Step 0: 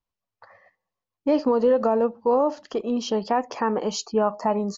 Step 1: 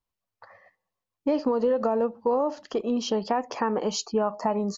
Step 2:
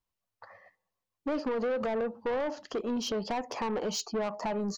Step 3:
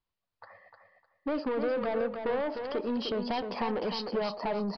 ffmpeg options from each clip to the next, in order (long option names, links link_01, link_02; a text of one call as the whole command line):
ffmpeg -i in.wav -af "acompressor=threshold=-21dB:ratio=3" out.wav
ffmpeg -i in.wav -af "asoftclip=type=tanh:threshold=-26dB,volume=-1dB" out.wav
ffmpeg -i in.wav -filter_complex "[0:a]asplit=2[link_01][link_02];[link_02]aecho=0:1:304|608|912:0.473|0.109|0.025[link_03];[link_01][link_03]amix=inputs=2:normalize=0,aresample=11025,aresample=44100" out.wav